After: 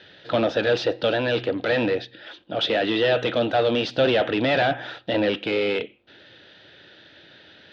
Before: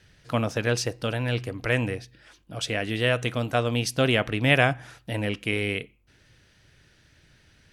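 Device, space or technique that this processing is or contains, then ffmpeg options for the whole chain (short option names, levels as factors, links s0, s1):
overdrive pedal into a guitar cabinet: -filter_complex "[0:a]asplit=2[s0][s1];[s1]highpass=f=720:p=1,volume=28.2,asoftclip=type=tanh:threshold=0.596[s2];[s0][s2]amix=inputs=2:normalize=0,lowpass=f=1800:p=1,volume=0.501,highpass=100,equalizer=f=140:t=q:w=4:g=-5,equalizer=f=330:t=q:w=4:g=4,equalizer=f=560:t=q:w=4:g=4,equalizer=f=1100:t=q:w=4:g=-10,equalizer=f=2200:t=q:w=4:g=-7,equalizer=f=3600:t=q:w=4:g=9,lowpass=f=4300:w=0.5412,lowpass=f=4300:w=1.3066,volume=0.501"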